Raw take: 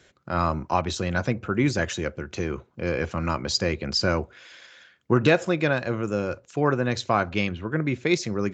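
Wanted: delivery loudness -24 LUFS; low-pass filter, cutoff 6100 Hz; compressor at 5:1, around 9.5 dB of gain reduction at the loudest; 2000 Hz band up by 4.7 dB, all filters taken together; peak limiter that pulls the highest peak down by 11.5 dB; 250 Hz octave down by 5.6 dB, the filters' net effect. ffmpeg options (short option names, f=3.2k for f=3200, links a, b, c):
-af "lowpass=6.1k,equalizer=f=250:t=o:g=-8.5,equalizer=f=2k:t=o:g=6.5,acompressor=threshold=-24dB:ratio=5,volume=11dB,alimiter=limit=-12dB:level=0:latency=1"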